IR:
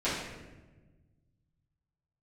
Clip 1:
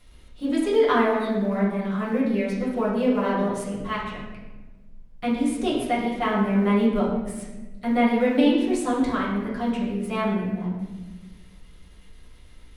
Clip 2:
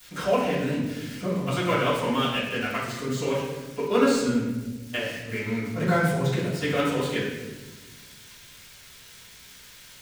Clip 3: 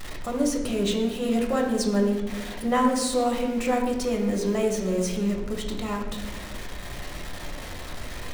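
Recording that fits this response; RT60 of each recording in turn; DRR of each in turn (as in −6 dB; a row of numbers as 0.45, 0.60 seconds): 2; 1.2, 1.2, 1.2 seconds; −8.0, −13.5, −0.5 decibels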